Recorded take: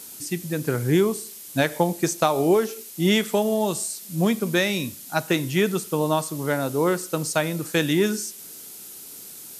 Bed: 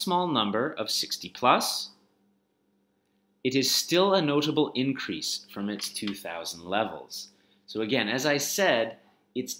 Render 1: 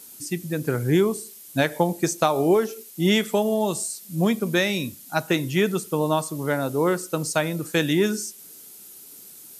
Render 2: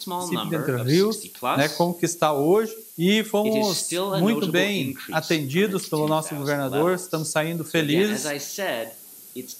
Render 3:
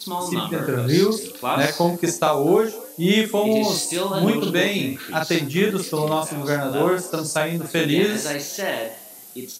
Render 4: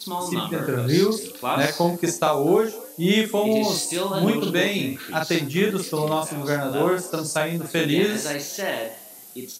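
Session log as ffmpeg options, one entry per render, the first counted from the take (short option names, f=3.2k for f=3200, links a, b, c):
-af "afftdn=nr=6:nf=-41"
-filter_complex "[1:a]volume=-3.5dB[a];[0:a][a]amix=inputs=2:normalize=0"
-filter_complex "[0:a]asplit=2[a][b];[b]adelay=41,volume=-3dB[c];[a][c]amix=inputs=2:normalize=0,asplit=3[d][e][f];[e]adelay=246,afreqshift=76,volume=-22.5dB[g];[f]adelay=492,afreqshift=152,volume=-32.4dB[h];[d][g][h]amix=inputs=3:normalize=0"
-af "volume=-1.5dB"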